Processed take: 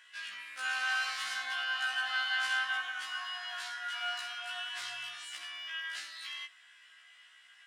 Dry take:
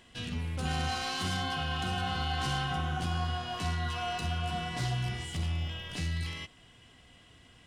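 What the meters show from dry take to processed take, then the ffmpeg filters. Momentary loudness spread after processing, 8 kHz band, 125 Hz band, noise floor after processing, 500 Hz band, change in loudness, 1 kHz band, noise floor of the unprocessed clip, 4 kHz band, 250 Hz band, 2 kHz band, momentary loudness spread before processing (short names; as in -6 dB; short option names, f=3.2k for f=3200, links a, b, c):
11 LU, -2.0 dB, under -40 dB, -60 dBFS, -14.5 dB, -1.5 dB, -6.0 dB, -58 dBFS, +0.5 dB, under -30 dB, +6.0 dB, 4 LU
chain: -af "highpass=f=1.6k:t=q:w=3,afftfilt=real='re*1.73*eq(mod(b,3),0)':imag='im*1.73*eq(mod(b,3),0)':win_size=2048:overlap=0.75"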